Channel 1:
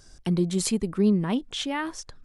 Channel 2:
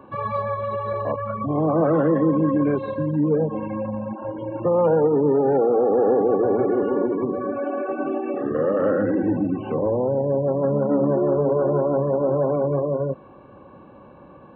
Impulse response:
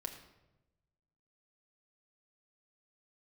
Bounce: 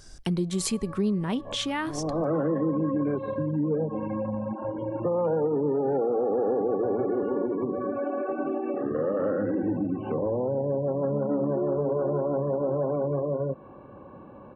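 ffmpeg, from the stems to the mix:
-filter_complex "[0:a]volume=2.5dB,asplit=3[a][b][c];[b]volume=-20dB[d];[1:a]lowpass=f=1.7k:p=1,adelay=400,volume=0dB[e];[c]apad=whole_len=659646[f];[e][f]sidechaincompress=threshold=-41dB:ratio=4:attack=16:release=291[g];[2:a]atrim=start_sample=2205[h];[d][h]afir=irnorm=-1:irlink=0[i];[a][g][i]amix=inputs=3:normalize=0,acompressor=threshold=-28dB:ratio=2"

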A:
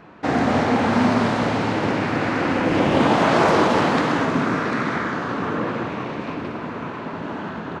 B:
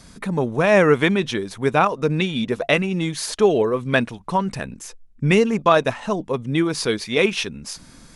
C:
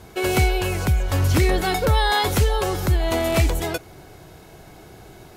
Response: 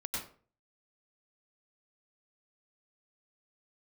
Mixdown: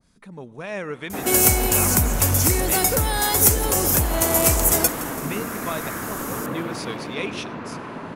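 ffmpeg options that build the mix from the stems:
-filter_complex "[0:a]acompressor=threshold=-29dB:ratio=1.5,adelay=900,volume=-6dB[a];[1:a]adynamicequalizer=threshold=0.0282:dfrequency=1600:dqfactor=0.7:tfrequency=1600:tqfactor=0.7:attack=5:release=100:ratio=0.375:range=2:mode=boostabove:tftype=highshelf,volume=-17dB,asplit=2[b][c];[c]volume=-21.5dB[d];[2:a]acompressor=threshold=-20dB:ratio=6,aexciter=amount=7.7:drive=3.7:freq=5.5k,adelay=1100,volume=1.5dB,asplit=2[e][f];[f]volume=-17dB[g];[3:a]atrim=start_sample=2205[h];[d][h]afir=irnorm=-1:irlink=0[i];[g]aecho=0:1:167|334|501|668|835|1002|1169|1336:1|0.55|0.303|0.166|0.0915|0.0503|0.0277|0.0152[j];[a][b][e][i][j]amix=inputs=5:normalize=0,dynaudnorm=f=390:g=5:m=4dB"

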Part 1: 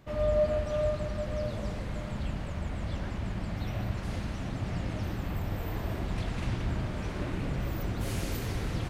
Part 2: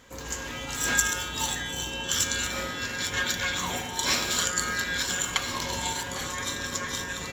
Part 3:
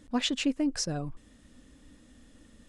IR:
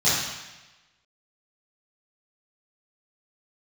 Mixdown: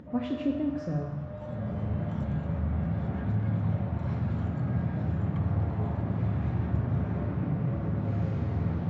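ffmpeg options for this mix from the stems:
-filter_complex "[0:a]highpass=f=110:w=0.5412,highpass=f=110:w=1.3066,volume=34dB,asoftclip=hard,volume=-34dB,volume=-8dB,afade=t=in:st=1.31:d=0.5:silence=0.446684,asplit=2[a][b];[b]volume=-7dB[c];[1:a]volume=-18.5dB[d];[2:a]highpass=100,volume=-4.5dB,asplit=3[e][f][g];[f]volume=-17.5dB[h];[g]apad=whole_len=322892[i];[d][i]sidechaincompress=threshold=-49dB:ratio=8:attack=16:release=432[j];[3:a]atrim=start_sample=2205[k];[c][h]amix=inputs=2:normalize=0[l];[l][k]afir=irnorm=-1:irlink=0[m];[a][j][e][m]amix=inputs=4:normalize=0,lowpass=1.3k,equalizer=f=73:t=o:w=1.1:g=13,acompressor=mode=upward:threshold=-41dB:ratio=2.5"

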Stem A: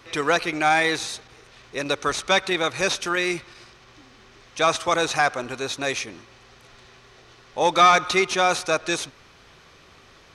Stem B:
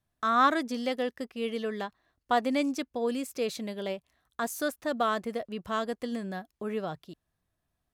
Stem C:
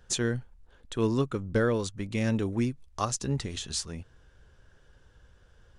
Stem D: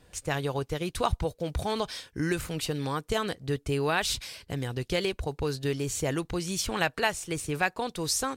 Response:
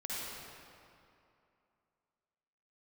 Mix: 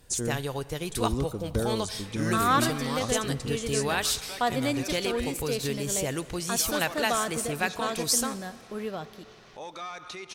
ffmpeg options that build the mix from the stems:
-filter_complex "[0:a]highshelf=f=7.5k:g=-11.5,alimiter=limit=-19dB:level=0:latency=1:release=82,acompressor=mode=upward:threshold=-32dB:ratio=2.5,adelay=2000,volume=-13dB,asplit=2[a][b];[b]volume=-22dB[c];[1:a]adelay=2100,volume=-1.5dB,asplit=2[d][e];[e]volume=-17.5dB[f];[2:a]equalizer=f=2.3k:w=0.78:g=-14.5,volume=-2.5dB[g];[3:a]volume=-2.5dB,asplit=2[h][i];[i]volume=-18dB[j];[4:a]atrim=start_sample=2205[k];[c][f][j]amix=inputs=3:normalize=0[l];[l][k]afir=irnorm=-1:irlink=0[m];[a][d][g][h][m]amix=inputs=5:normalize=0,aemphasis=mode=production:type=cd"

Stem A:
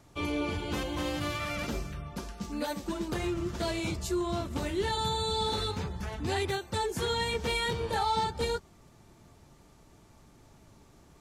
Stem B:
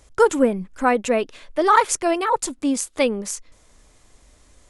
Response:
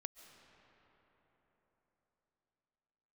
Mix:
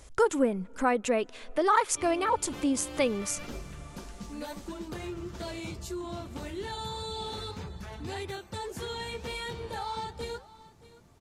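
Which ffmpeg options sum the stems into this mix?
-filter_complex "[0:a]flanger=delay=2:depth=8.1:regen=-84:speed=1.7:shape=sinusoidal,adelay=1800,volume=1dB,asplit=2[a][b];[b]volume=-22dB[c];[1:a]volume=1dB,asplit=2[d][e];[e]volume=-20dB[f];[2:a]atrim=start_sample=2205[g];[f][g]afir=irnorm=-1:irlink=0[h];[c]aecho=0:1:623:1[i];[a][d][h][i]amix=inputs=4:normalize=0,acompressor=threshold=-38dB:ratio=1.5"

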